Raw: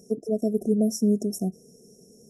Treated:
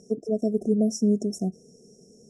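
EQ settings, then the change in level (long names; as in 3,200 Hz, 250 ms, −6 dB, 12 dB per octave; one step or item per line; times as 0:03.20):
low-pass filter 8,300 Hz 24 dB per octave
0.0 dB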